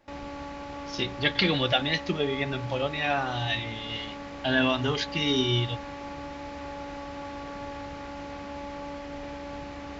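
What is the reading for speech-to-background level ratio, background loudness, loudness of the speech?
11.0 dB, -38.5 LUFS, -27.5 LUFS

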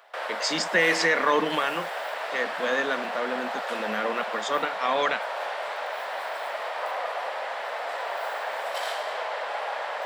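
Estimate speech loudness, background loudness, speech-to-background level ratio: -27.0 LUFS, -31.5 LUFS, 4.5 dB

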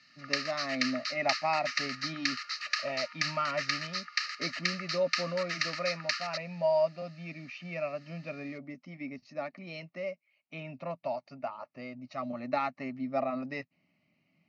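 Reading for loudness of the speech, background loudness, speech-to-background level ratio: -36.0 LUFS, -34.0 LUFS, -2.0 dB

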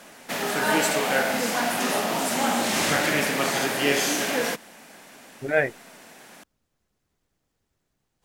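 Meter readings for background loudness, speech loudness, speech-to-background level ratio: -23.5 LUFS, -25.5 LUFS, -2.0 dB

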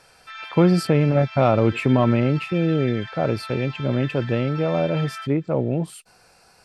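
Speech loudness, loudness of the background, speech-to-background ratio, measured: -21.5 LUFS, -36.0 LUFS, 14.5 dB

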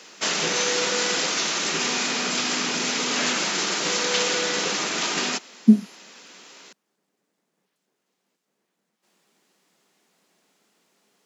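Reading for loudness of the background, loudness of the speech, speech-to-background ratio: -22.5 LUFS, -19.5 LUFS, 3.0 dB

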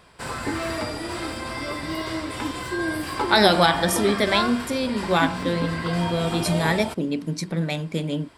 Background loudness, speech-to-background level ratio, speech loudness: -28.5 LUFS, 5.5 dB, -23.0 LUFS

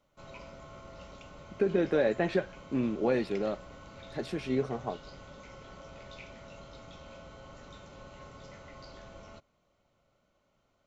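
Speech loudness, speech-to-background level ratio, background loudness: -31.0 LUFS, 18.5 dB, -49.5 LUFS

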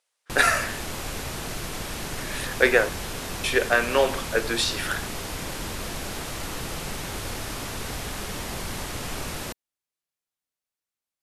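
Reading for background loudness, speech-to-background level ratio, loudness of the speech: -32.5 LUFS, 9.0 dB, -23.5 LUFS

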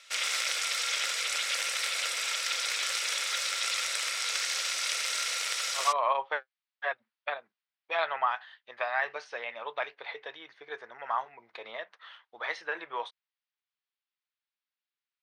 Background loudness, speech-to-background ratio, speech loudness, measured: -29.0 LUFS, -5.0 dB, -34.0 LUFS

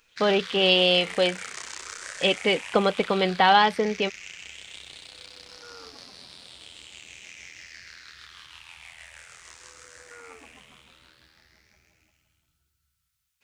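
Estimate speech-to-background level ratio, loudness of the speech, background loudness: 18.0 dB, -22.0 LUFS, -40.0 LUFS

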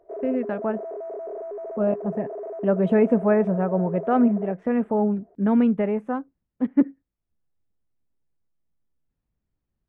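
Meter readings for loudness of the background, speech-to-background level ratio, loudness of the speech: -34.5 LUFS, 11.0 dB, -23.5 LUFS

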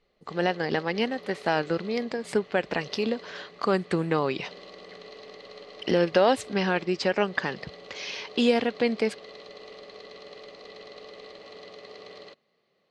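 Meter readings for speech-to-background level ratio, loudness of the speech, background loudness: 18.5 dB, -27.0 LUFS, -45.5 LUFS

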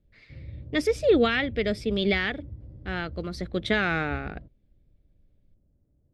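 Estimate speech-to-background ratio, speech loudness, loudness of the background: 16.5 dB, -26.5 LUFS, -43.0 LUFS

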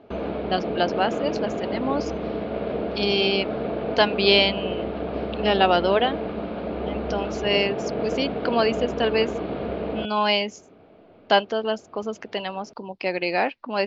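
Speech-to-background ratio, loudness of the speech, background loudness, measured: 5.0 dB, -24.0 LUFS, -29.0 LUFS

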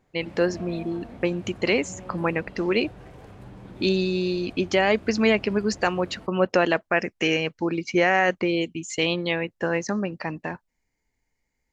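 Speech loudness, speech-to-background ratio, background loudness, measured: -24.5 LUFS, 19.5 dB, -44.0 LUFS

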